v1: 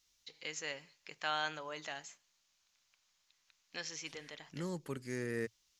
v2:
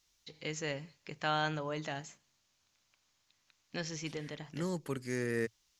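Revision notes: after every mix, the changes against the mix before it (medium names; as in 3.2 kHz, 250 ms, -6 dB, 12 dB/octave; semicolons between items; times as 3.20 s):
first voice: remove high-pass 1.1 kHz 6 dB/octave; second voice +4.0 dB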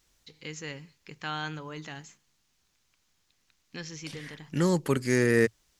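first voice: add peaking EQ 630 Hz -11 dB 0.5 oct; second voice +11.5 dB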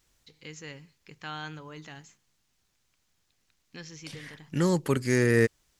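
first voice -4.0 dB; master: add peaking EQ 110 Hz +8 dB 0.21 oct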